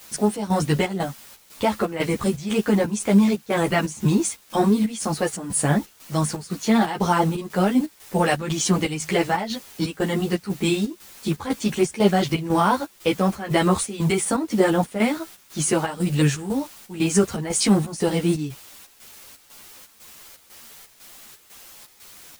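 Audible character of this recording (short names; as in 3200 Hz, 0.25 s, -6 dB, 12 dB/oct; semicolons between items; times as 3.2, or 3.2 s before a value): a quantiser's noise floor 8-bit, dither triangular; chopped level 2 Hz, depth 65%, duty 70%; a shimmering, thickened sound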